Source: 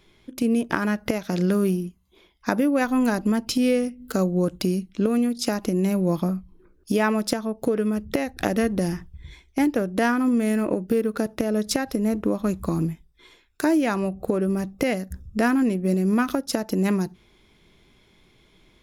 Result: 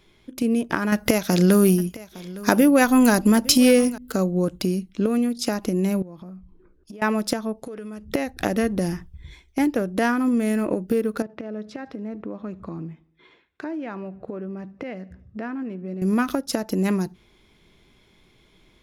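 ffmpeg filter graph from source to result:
-filter_complex "[0:a]asettb=1/sr,asplit=3[s0][s1][s2];[s0]atrim=end=0.924[s3];[s1]atrim=start=0.92:end=3.98,asetpts=PTS-STARTPTS,afade=t=in:d=0.004:c=qsin,afade=t=out:st=3.056:d=0.004:c=qsin,acontrast=46,aemphasis=mode=production:type=cd,aecho=1:1:860:0.112,atrim=end_sample=134946[s4];[s2]atrim=start=3.976[s5];[s3][s4]acrossfade=d=0.004:c1=hsin:c2=qsin[s6];[s6][s5]acrossfade=d=0.004:c1=qsin:c2=hsin,asettb=1/sr,asplit=3[s7][s8][s9];[s7]atrim=end=6.024[s10];[s8]atrim=start=6.02:end=7.02,asetpts=PTS-STARTPTS,afade=t=in:d=0.004:c=qsin,afade=t=out:st=0.996:d=0.004:c=qsin,lowpass=f=2400:p=1,acompressor=threshold=0.0158:ratio=16:attack=3.2:release=140:knee=1:detection=peak[s11];[s9]atrim=start=7.016[s12];[s10][s11]acrossfade=d=0.004:c1=hsin:c2=qsin[s13];[s13][s12]acrossfade=d=0.004:c1=qsin:c2=hsin,asettb=1/sr,asplit=3[s14][s15][s16];[s14]atrim=end=7.604[s17];[s15]atrim=start=7.6:end=8.08,asetpts=PTS-STARTPTS,afade=t=in:d=0.004:c=qsin,afade=t=out:st=0.476:d=0.004:c=qsin,lowshelf=f=490:g=-5.5,acompressor=threshold=0.0251:ratio=5:attack=3.2:release=140:knee=1:detection=peak,lowpass=f=11000:w=0.5412,lowpass=f=11000:w=1.3066[s18];[s16]atrim=start=8.076[s19];[s17][s18]acrossfade=d=0.004:c1=hsin:c2=qsin[s20];[s20][s19]acrossfade=d=0.004:c1=qsin:c2=hsin,asettb=1/sr,asplit=3[s21][s22][s23];[s21]atrim=end=11.224[s24];[s22]atrim=start=11.22:end=16.02,asetpts=PTS-STARTPTS,afade=t=in:d=0.004:c=qsin,afade=t=out:st=4.796:d=0.004:c=qsin,acompressor=threshold=0.0158:ratio=2:attack=3.2:release=140:knee=1:detection=peak,highpass=110,lowpass=2600,aecho=1:1:75|150|225|300:0.0708|0.0404|0.023|0.0131,atrim=end_sample=211680[s25];[s23]atrim=start=16.016[s26];[s24][s25]acrossfade=d=0.004:c1=hsin:c2=qsin[s27];[s27][s26]acrossfade=d=0.004:c1=qsin:c2=hsin"

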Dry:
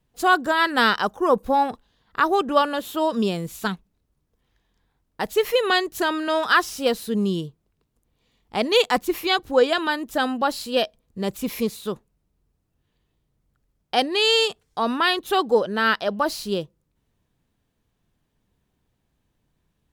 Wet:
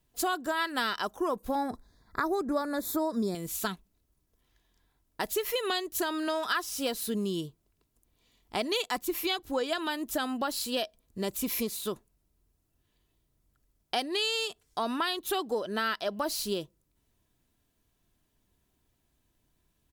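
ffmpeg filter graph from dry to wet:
-filter_complex "[0:a]asettb=1/sr,asplit=3[s0][s1][s2];[s0]atrim=end=1.554[s3];[s1]atrim=start=1.55:end=3.35,asetpts=PTS-STARTPTS,afade=t=in:d=0.004:c=qsin,afade=t=out:st=1.796:d=0.004:c=qsin,asuperstop=centerf=2900:order=4:qfactor=1.7,lowshelf=f=370:g=8.5[s4];[s2]atrim=start=3.346[s5];[s3][s4]acrossfade=d=0.004:c1=hsin:c2=qsin[s6];[s6][s5]acrossfade=d=0.004:c1=qsin:c2=hsin,aemphasis=mode=production:type=cd,aecho=1:1:3:0.3,acompressor=threshold=0.0562:ratio=4,volume=0.708"

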